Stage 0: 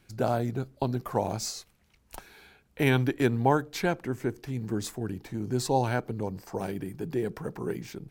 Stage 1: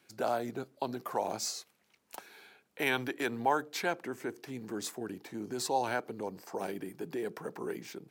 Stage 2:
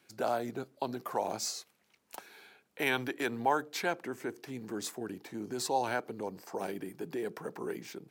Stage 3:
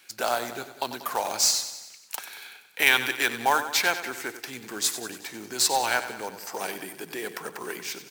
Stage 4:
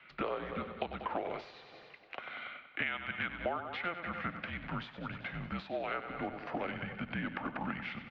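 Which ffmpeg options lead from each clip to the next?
-filter_complex "[0:a]highpass=280,acrossover=split=590|4400[a][b][c];[a]alimiter=level_in=5dB:limit=-24dB:level=0:latency=1,volume=-5dB[d];[d][b][c]amix=inputs=3:normalize=0,volume=-1.5dB"
-af anull
-af "tiltshelf=f=830:g=-9.5,acrusher=bits=3:mode=log:mix=0:aa=0.000001,aecho=1:1:94|188|282|376|470|564:0.251|0.146|0.0845|0.049|0.0284|0.0165,volume=5.5dB"
-filter_complex "[0:a]asplit=2[a][b];[b]adelay=285,lowpass=f=2.1k:p=1,volume=-21dB,asplit=2[c][d];[d]adelay=285,lowpass=f=2.1k:p=1,volume=0.38,asplit=2[e][f];[f]adelay=285,lowpass=f=2.1k:p=1,volume=0.38[g];[a][c][e][g]amix=inputs=4:normalize=0,acompressor=threshold=-33dB:ratio=8,highpass=f=260:t=q:w=0.5412,highpass=f=260:t=q:w=1.307,lowpass=f=3.1k:t=q:w=0.5176,lowpass=f=3.1k:t=q:w=0.7071,lowpass=f=3.1k:t=q:w=1.932,afreqshift=-180,volume=1dB"

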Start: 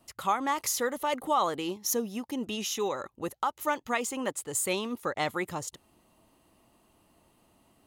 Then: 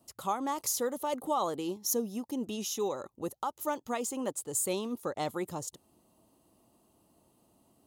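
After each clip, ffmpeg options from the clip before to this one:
-af "highpass=f=100:p=1,equalizer=f=2k:w=0.84:g=-12.5"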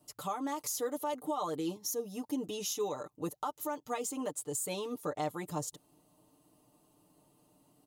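-af "aecho=1:1:6.7:0.83,alimiter=limit=-23dB:level=0:latency=1:release=266,volume=-2dB"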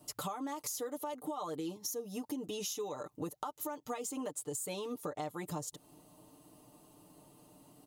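-af "acompressor=threshold=-44dB:ratio=6,volume=7dB"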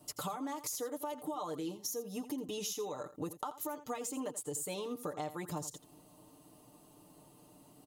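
-af "aecho=1:1:84:0.2"

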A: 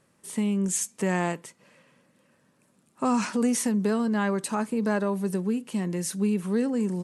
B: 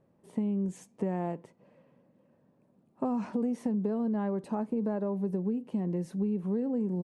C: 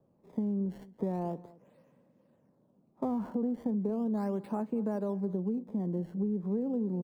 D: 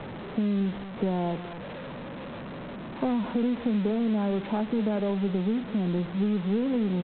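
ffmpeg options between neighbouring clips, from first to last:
-af "firequalizer=gain_entry='entry(730,0);entry(1300,-13);entry(7300,-26)':delay=0.05:min_phase=1,acompressor=threshold=-27dB:ratio=6"
-filter_complex "[0:a]acrossover=split=110|440|1500[a][b][c][d];[d]acrusher=samples=20:mix=1:aa=0.000001:lfo=1:lforange=32:lforate=0.37[e];[a][b][c][e]amix=inputs=4:normalize=0,asplit=2[f][g];[g]adelay=221.6,volume=-20dB,highshelf=f=4k:g=-4.99[h];[f][h]amix=inputs=2:normalize=0,volume=-1.5dB"
-af "aeval=exprs='val(0)+0.5*0.0133*sgn(val(0))':c=same,aresample=8000,acrusher=bits=7:mix=0:aa=0.000001,aresample=44100,volume=4dB"

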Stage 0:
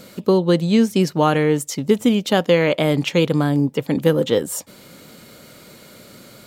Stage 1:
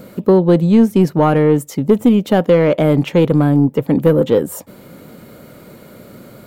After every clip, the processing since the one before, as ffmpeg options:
-af "acontrast=87,equalizer=f=5.3k:t=o:w=2.8:g=-14.5"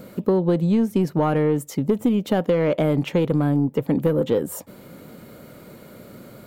-af "acompressor=threshold=-12dB:ratio=6,volume=-4dB"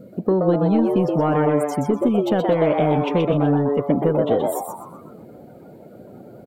-filter_complex "[0:a]asplit=7[a][b][c][d][e][f][g];[b]adelay=125,afreqshift=140,volume=-4dB[h];[c]adelay=250,afreqshift=280,volume=-10dB[i];[d]adelay=375,afreqshift=420,volume=-16dB[j];[e]adelay=500,afreqshift=560,volume=-22.1dB[k];[f]adelay=625,afreqshift=700,volume=-28.1dB[l];[g]adelay=750,afreqshift=840,volume=-34.1dB[m];[a][h][i][j][k][l][m]amix=inputs=7:normalize=0,afftdn=nr=16:nf=-41"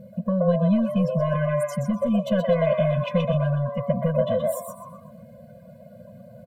-af "afftfilt=real='re*eq(mod(floor(b*sr/1024/240),2),0)':imag='im*eq(mod(floor(b*sr/1024/240),2),0)':win_size=1024:overlap=0.75"

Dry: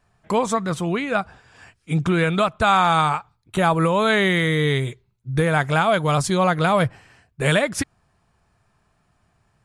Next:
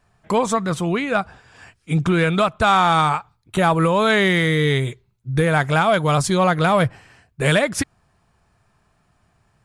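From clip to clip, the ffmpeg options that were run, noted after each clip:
-af "acontrast=44,volume=-3.5dB"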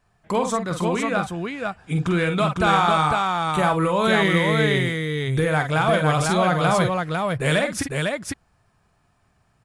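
-af "aecho=1:1:46|50|502:0.376|0.282|0.668,volume=-4dB"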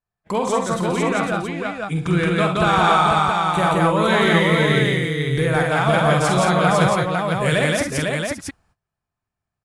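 -af "agate=range=-23dB:threshold=-55dB:ratio=16:detection=peak,aecho=1:1:67.06|172:0.316|0.891"

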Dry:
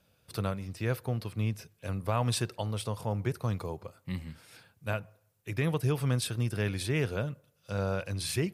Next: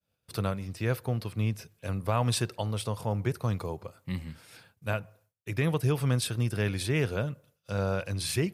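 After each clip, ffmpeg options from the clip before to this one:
-af "agate=range=-33dB:threshold=-58dB:ratio=3:detection=peak,volume=2dB"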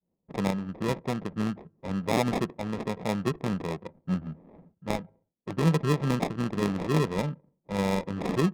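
-af "acrusher=samples=30:mix=1:aa=0.000001,lowshelf=f=140:t=q:w=3:g=-6.5,adynamicsmooth=sensitivity=5:basefreq=590,volume=2.5dB"

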